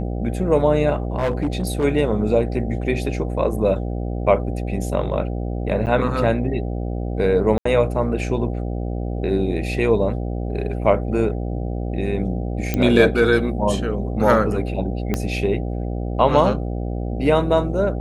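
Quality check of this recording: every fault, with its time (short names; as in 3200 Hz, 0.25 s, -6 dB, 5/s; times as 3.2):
buzz 60 Hz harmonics 13 -25 dBFS
1.18–1.85 clipped -16.5 dBFS
5.86–5.87 gap 8.9 ms
7.58–7.65 gap 74 ms
12.74 pop -8 dBFS
15.14 pop -8 dBFS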